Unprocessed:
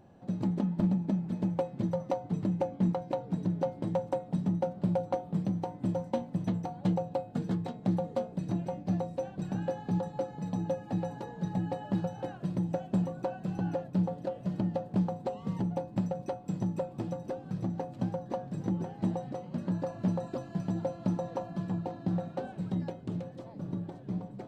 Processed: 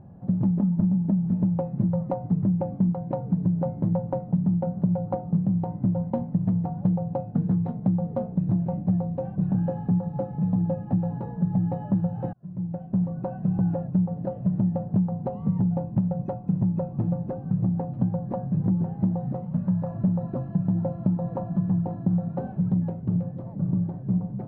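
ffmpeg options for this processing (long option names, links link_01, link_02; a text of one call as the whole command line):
ffmpeg -i in.wav -filter_complex "[0:a]asettb=1/sr,asplit=3[link_01][link_02][link_03];[link_01]atrim=end=19.454[link_04];[link_02]atrim=start=19.45:end=19.92,asetpts=PTS-STARTPTS,afade=type=in:duration=0.004:curve=qsin,afade=type=out:start_time=0.466:duration=0.004:curve=qsin,equalizer=frequency=330:width_type=o:width=0.77:gain=-11[link_05];[link_03]atrim=start=19.916[link_06];[link_04][link_05]acrossfade=duration=0.004:curve1=hsin:curve2=qsin[link_07];[link_07][link_06]acrossfade=duration=0.004:curve1=qsin:curve2=hsin,asplit=2[link_08][link_09];[link_08]atrim=end=12.33,asetpts=PTS-STARTPTS,afade=type=out:start_time=12.326:duration=0.004:curve=hsin[link_10];[link_09]atrim=start=12.33,asetpts=PTS-STARTPTS,afade=type=in:duration=1.18[link_11];[link_10][link_11]concat=n=2:v=0:a=1,lowpass=1100,lowshelf=frequency=230:width_type=q:width=1.5:gain=8,acompressor=threshold=-24dB:ratio=6,volume=4.5dB" out.wav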